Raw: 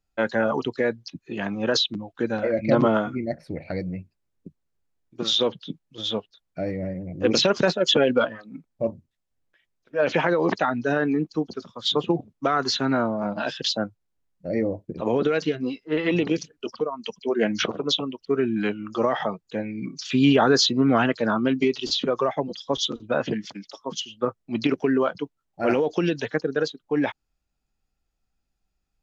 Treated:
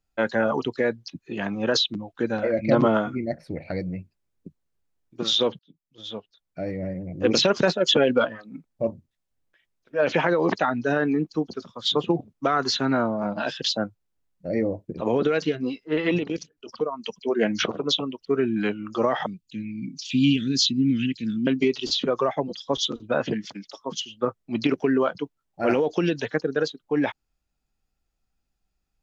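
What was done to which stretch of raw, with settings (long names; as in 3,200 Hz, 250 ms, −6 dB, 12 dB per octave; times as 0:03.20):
0:05.59–0:06.94: fade in
0:16.18–0:16.69: output level in coarse steps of 13 dB
0:19.26–0:21.47: Chebyshev band-stop filter 270–2,600 Hz, order 3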